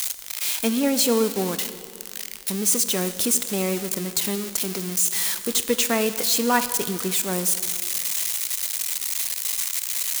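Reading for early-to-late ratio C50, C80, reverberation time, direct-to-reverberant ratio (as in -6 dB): 12.0 dB, 13.0 dB, 2.3 s, 11.0 dB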